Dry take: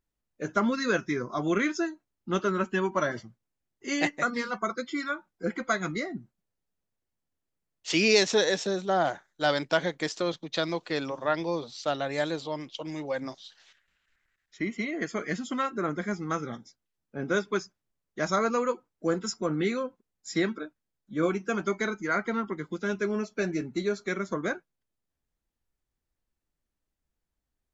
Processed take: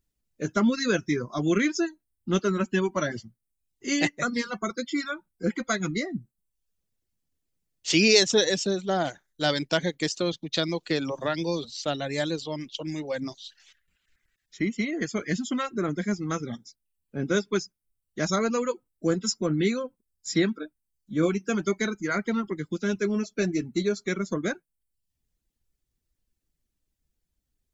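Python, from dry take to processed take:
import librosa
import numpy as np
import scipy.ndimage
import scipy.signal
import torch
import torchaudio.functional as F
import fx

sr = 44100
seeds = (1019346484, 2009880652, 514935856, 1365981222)

y = fx.band_squash(x, sr, depth_pct=70, at=(10.89, 11.65))
y = fx.dereverb_blind(y, sr, rt60_s=0.57)
y = fx.peak_eq(y, sr, hz=990.0, db=-10.5, octaves=2.4)
y = y * librosa.db_to_amplitude(7.5)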